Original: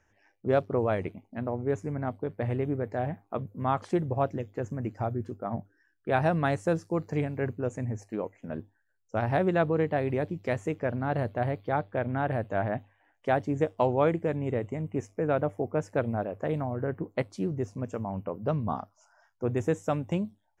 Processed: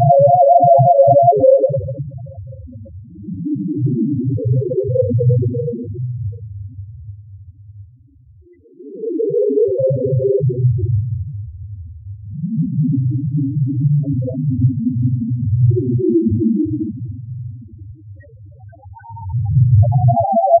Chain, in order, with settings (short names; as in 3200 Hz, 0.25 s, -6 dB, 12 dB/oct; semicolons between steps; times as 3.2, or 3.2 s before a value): Paulstretch 24×, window 0.05 s, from 4.19; reverb removal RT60 0.91 s; on a send: reverse bouncing-ball echo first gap 40 ms, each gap 1.2×, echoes 5; on the sum: loudest bins only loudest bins 2; maximiser +22 dB; gain -1 dB